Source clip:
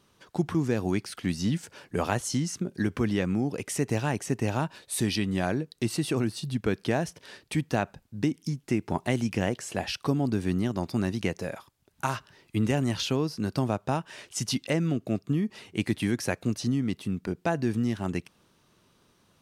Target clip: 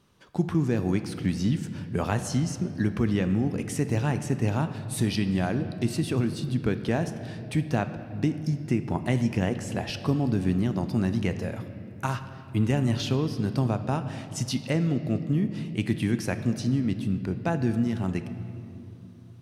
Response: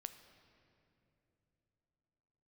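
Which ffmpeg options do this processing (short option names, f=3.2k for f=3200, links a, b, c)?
-filter_complex "[0:a]bass=f=250:g=5,treble=f=4k:g=-2[a];[1:a]atrim=start_sample=2205[b];[a][b]afir=irnorm=-1:irlink=0,volume=3.5dB"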